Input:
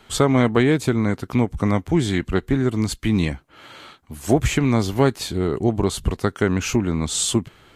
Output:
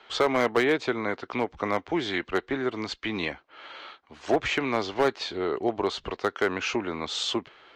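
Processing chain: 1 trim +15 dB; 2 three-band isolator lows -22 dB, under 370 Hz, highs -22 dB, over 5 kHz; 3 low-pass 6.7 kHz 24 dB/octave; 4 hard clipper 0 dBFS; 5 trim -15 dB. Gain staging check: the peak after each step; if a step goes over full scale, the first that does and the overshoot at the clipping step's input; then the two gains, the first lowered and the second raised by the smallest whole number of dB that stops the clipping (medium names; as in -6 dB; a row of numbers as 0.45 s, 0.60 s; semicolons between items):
+10.5 dBFS, +7.5 dBFS, +7.5 dBFS, 0.0 dBFS, -15.0 dBFS; step 1, 7.5 dB; step 1 +7 dB, step 5 -7 dB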